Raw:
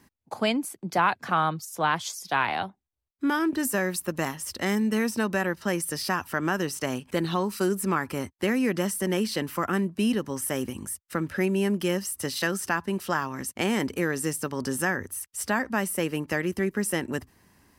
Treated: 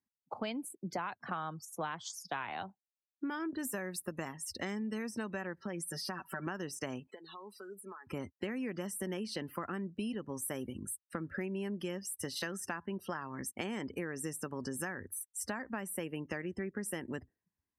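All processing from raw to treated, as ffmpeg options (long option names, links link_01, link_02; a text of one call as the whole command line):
ffmpeg -i in.wav -filter_complex "[0:a]asettb=1/sr,asplit=3[link_01][link_02][link_03];[link_01]atrim=end=5.614[link_04];[link_02]atrim=start=5.61:end=6.47,asetpts=PTS-STARTPTS,afade=type=in:duration=0.004:curve=qsin,afade=type=out:start_time=0.856:duration=0.004:curve=qsin,aecho=1:1:5.3:0.75,atrim=end_sample=37926,acompressor=threshold=-33dB:ratio=2:attack=3.2:release=140:knee=1:detection=peak[link_05];[link_03]atrim=start=6.466[link_06];[link_04][link_05]acrossfade=duration=0.004:curve1=hsin:curve2=qsin[link_07];[link_07][link_06]acrossfade=duration=0.004:curve1=qsin:curve2=hsin,asettb=1/sr,asplit=3[link_08][link_09][link_10];[link_08]atrim=end=7.074[link_11];[link_09]atrim=start=7.07:end=8.07,asetpts=PTS-STARTPTS,afade=type=in:duration=0.004:curve=qsin,afade=type=out:start_time=0.996:duration=0.004:curve=qsin,highpass=480,acompressor=threshold=-39dB:ratio=8:attack=3.2:release=140:knee=1:detection=peak,aecho=1:1:4.7:0.37,atrim=end_sample=44100[link_12];[link_10]atrim=start=8.066[link_13];[link_11][link_12]acrossfade=duration=0.004:curve1=hsin:curve2=qsin[link_14];[link_14][link_13]acrossfade=duration=0.004:curve1=qsin:curve2=hsin,afftdn=noise_reduction=30:noise_floor=-41,acompressor=threshold=-30dB:ratio=6,volume=-5dB" out.wav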